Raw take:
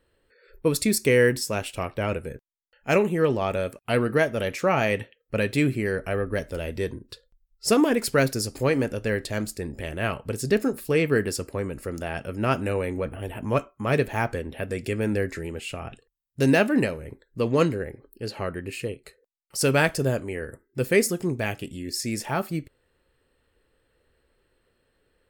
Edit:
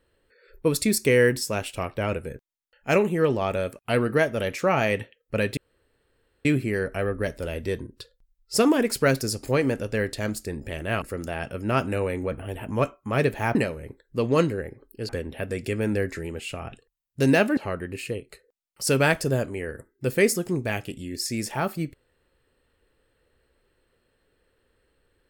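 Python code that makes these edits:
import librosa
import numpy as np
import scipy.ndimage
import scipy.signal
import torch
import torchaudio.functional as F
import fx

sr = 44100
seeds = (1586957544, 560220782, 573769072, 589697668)

y = fx.edit(x, sr, fx.insert_room_tone(at_s=5.57, length_s=0.88),
    fx.cut(start_s=10.14, length_s=1.62),
    fx.move(start_s=16.77, length_s=1.54, to_s=14.29), tone=tone)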